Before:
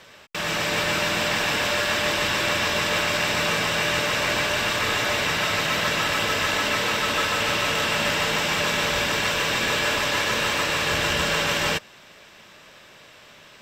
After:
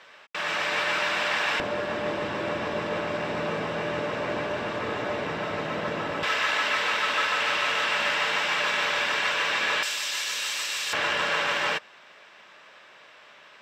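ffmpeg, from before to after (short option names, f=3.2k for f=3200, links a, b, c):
-af "asetnsamples=n=441:p=0,asendcmd='1.6 bandpass f 370;6.23 bandpass f 1600;9.83 bandpass f 7100;10.93 bandpass f 1300',bandpass=f=1.4k:t=q:w=0.61:csg=0"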